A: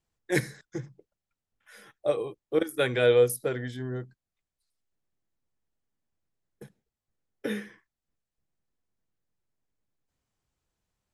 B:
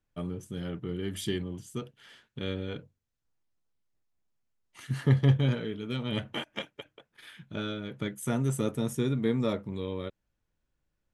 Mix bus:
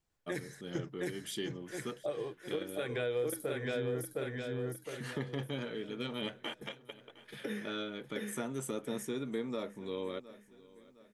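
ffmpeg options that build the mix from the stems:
-filter_complex "[0:a]acompressor=threshold=-26dB:ratio=6,volume=-1dB,asplit=2[a][b];[b]volume=-4dB[c];[1:a]highpass=270,adelay=100,volume=-1.5dB,asplit=2[d][e];[e]volume=-22dB[f];[c][f]amix=inputs=2:normalize=0,aecho=0:1:711|1422|2133|2844|3555|4266:1|0.41|0.168|0.0689|0.0283|0.0116[g];[a][d][g]amix=inputs=3:normalize=0,alimiter=level_in=2dB:limit=-24dB:level=0:latency=1:release=359,volume=-2dB"

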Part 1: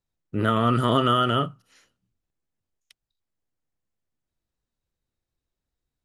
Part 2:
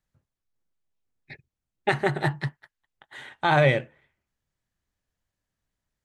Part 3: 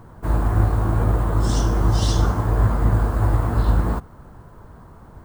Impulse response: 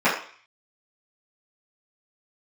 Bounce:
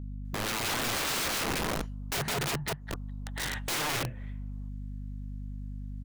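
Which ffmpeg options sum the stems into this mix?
-filter_complex "[0:a]flanger=delay=18:depth=3.3:speed=0.35,volume=-1.5dB,asplit=2[a][b];[1:a]asubboost=boost=6.5:cutoff=150,acompressor=threshold=-19dB:ratio=6,adelay=250,volume=2dB[c];[2:a]lowpass=f=1.4k:w=0.5412,lowpass=f=1.4k:w=1.3066,equalizer=f=290:t=o:w=0.21:g=-14,adelay=700,volume=-15.5dB[d];[b]apad=whole_len=262348[e];[d][e]sidechaingate=range=-33dB:threshold=-60dB:ratio=16:detection=peak[f];[a][c]amix=inputs=2:normalize=0,aeval=exprs='val(0)+0.00708*(sin(2*PI*50*n/s)+sin(2*PI*2*50*n/s)/2+sin(2*PI*3*50*n/s)/3+sin(2*PI*4*50*n/s)/4+sin(2*PI*5*50*n/s)/5)':c=same,acompressor=threshold=-31dB:ratio=4,volume=0dB[g];[f][g]amix=inputs=2:normalize=0,acontrast=53,aeval=exprs='(mod(20*val(0)+1,2)-1)/20':c=same"

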